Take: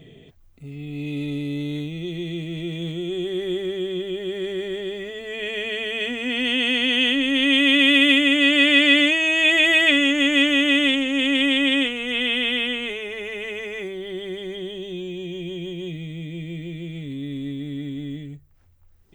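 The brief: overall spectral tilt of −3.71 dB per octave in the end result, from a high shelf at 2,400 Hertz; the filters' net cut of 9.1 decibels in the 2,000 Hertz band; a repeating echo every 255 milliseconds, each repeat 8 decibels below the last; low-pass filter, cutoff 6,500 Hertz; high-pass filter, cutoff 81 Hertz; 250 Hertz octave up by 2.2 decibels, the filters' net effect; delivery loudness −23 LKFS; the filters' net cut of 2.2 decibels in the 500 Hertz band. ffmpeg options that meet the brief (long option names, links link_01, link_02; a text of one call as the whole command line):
ffmpeg -i in.wav -af "highpass=81,lowpass=6500,equalizer=frequency=250:width_type=o:gain=4,equalizer=frequency=500:width_type=o:gain=-4,equalizer=frequency=2000:width_type=o:gain=-8,highshelf=frequency=2400:gain=-5.5,aecho=1:1:255|510|765|1020|1275:0.398|0.159|0.0637|0.0255|0.0102" out.wav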